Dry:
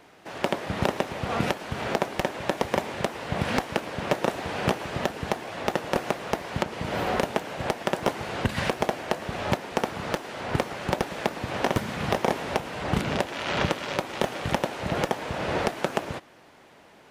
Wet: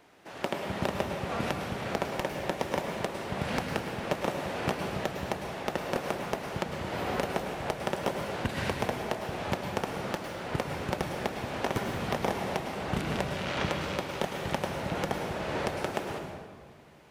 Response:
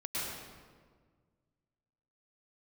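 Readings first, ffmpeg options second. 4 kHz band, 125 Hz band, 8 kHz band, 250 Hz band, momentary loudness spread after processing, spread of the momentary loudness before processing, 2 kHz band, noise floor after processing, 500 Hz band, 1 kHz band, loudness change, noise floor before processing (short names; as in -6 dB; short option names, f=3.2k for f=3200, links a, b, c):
-4.5 dB, -3.5 dB, -4.0 dB, -4.0 dB, 4 LU, 4 LU, -4.5 dB, -47 dBFS, -4.0 dB, -4.5 dB, -4.5 dB, -53 dBFS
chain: -filter_complex "[0:a]asplit=2[a][b];[1:a]atrim=start_sample=2205,highshelf=f=9.2k:g=8.5[c];[b][c]afir=irnorm=-1:irlink=0,volume=-5dB[d];[a][d]amix=inputs=2:normalize=0,volume=-8.5dB"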